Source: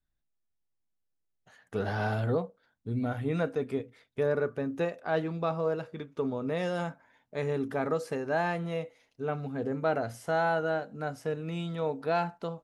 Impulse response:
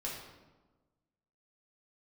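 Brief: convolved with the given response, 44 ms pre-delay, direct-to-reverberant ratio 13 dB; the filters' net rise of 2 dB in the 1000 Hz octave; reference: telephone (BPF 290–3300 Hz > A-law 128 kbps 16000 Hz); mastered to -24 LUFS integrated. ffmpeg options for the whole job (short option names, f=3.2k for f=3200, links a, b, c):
-filter_complex "[0:a]equalizer=f=1k:t=o:g=3,asplit=2[a][b];[1:a]atrim=start_sample=2205,adelay=44[c];[b][c]afir=irnorm=-1:irlink=0,volume=-14.5dB[d];[a][d]amix=inputs=2:normalize=0,highpass=290,lowpass=3.3k,volume=8dB" -ar 16000 -c:a pcm_alaw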